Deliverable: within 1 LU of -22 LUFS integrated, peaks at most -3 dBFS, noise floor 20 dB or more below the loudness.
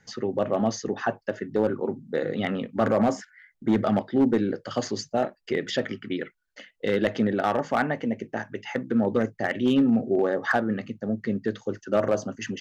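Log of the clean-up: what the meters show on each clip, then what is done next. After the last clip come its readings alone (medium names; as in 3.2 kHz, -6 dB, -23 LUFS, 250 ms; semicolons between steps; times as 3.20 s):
clipped samples 0.6%; clipping level -14.5 dBFS; loudness -26.5 LUFS; peak level -14.5 dBFS; loudness target -22.0 LUFS
-> clip repair -14.5 dBFS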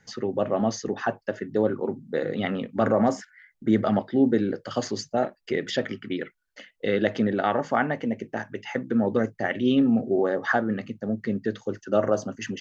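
clipped samples 0.0%; loudness -26.0 LUFS; peak level -7.5 dBFS; loudness target -22.0 LUFS
-> trim +4 dB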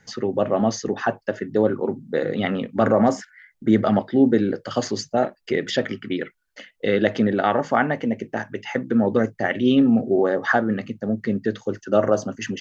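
loudness -22.0 LUFS; peak level -3.5 dBFS; noise floor -64 dBFS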